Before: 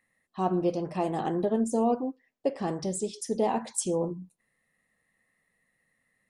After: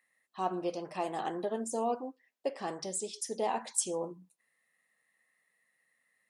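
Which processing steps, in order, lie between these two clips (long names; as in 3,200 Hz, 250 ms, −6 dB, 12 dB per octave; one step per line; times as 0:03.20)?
high-pass filter 890 Hz 6 dB per octave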